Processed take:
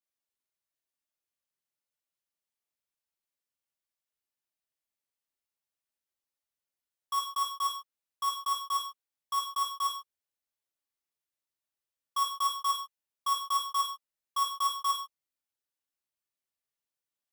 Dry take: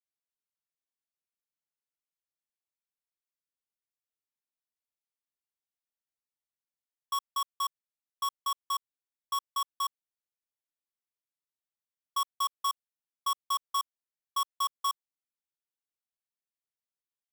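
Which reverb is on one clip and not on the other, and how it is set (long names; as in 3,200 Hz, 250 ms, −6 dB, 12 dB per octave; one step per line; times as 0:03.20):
reverb whose tail is shaped and stops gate 170 ms falling, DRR −1.5 dB
level −2 dB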